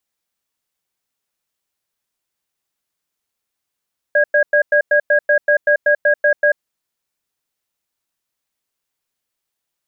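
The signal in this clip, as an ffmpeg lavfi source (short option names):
-f lavfi -i "aevalsrc='0.237*(sin(2*PI*590*t)+sin(2*PI*1640*t))*clip(min(mod(t,0.19),0.09-mod(t,0.19))/0.005,0,1)':d=2.41:s=44100"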